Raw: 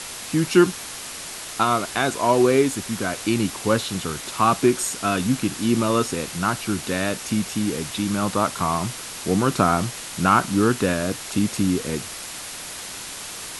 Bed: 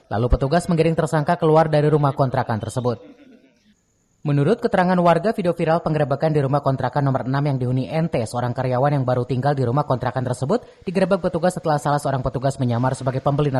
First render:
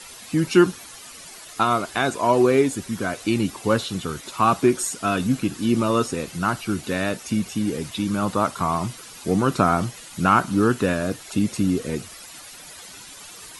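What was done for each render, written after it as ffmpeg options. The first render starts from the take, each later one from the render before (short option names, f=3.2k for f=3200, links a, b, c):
-af "afftdn=nr=12:nf=-35"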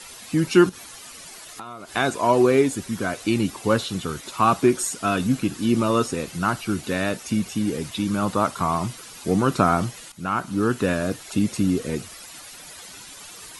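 -filter_complex "[0:a]asettb=1/sr,asplit=3[a][b][c];[a]atrim=end=0.694[d];[b]atrim=start=0.69:end=1.94,asetpts=PTS-STARTPTS,afade=t=in:d=0.004:c=qsin,afade=t=out:st=1.246:d=0.004:c=qsin,acompressor=threshold=-35dB:ratio=6:attack=3.2:release=140:knee=1:detection=peak[e];[c]atrim=start=1.936[f];[d][e]acrossfade=d=0.004:c1=hsin:c2=qsin[g];[g][f]acrossfade=d=0.004:c1=qsin:c2=hsin,asplit=2[h][i];[h]atrim=end=10.12,asetpts=PTS-STARTPTS,afade=t=out:st=10.116:d=0.004:c=hsin:silence=0.211349[j];[i]atrim=start=10.12,asetpts=PTS-STARTPTS,afade=t=in:d=0.83:silence=0.211349[k];[j][k]concat=n=2:v=0:a=1"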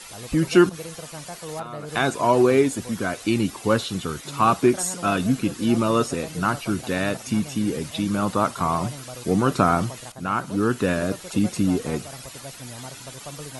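-filter_complex "[1:a]volume=-19.5dB[a];[0:a][a]amix=inputs=2:normalize=0"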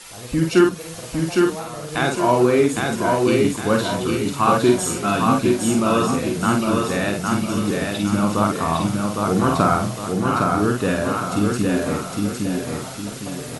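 -filter_complex "[0:a]asplit=2[a][b];[b]adelay=49,volume=-4dB[c];[a][c]amix=inputs=2:normalize=0,aecho=1:1:809|1618|2427|3236|4045:0.708|0.283|0.113|0.0453|0.0181"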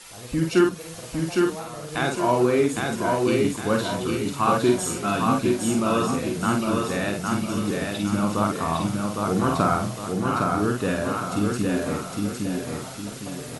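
-af "volume=-4dB"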